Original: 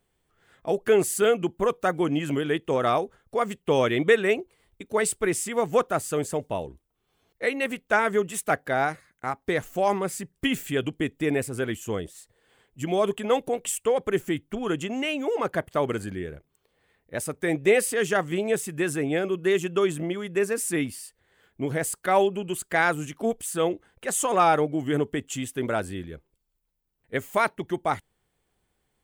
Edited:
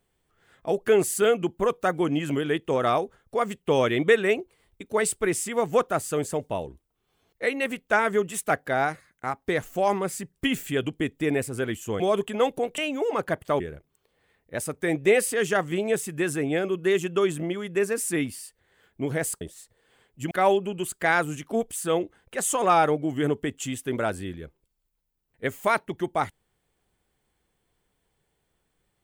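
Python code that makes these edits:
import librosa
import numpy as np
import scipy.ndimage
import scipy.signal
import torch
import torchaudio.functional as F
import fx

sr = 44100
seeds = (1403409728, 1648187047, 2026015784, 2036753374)

y = fx.edit(x, sr, fx.move(start_s=12.0, length_s=0.9, to_s=22.01),
    fx.cut(start_s=13.68, length_s=1.36),
    fx.cut(start_s=15.86, length_s=0.34), tone=tone)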